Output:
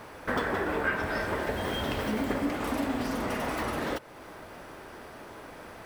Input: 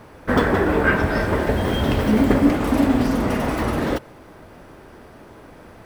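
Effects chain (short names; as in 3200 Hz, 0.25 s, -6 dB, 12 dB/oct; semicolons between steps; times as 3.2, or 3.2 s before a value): low shelf 400 Hz -10 dB; compressor 2:1, threshold -37 dBFS, peak gain reduction 12 dB; gain +2.5 dB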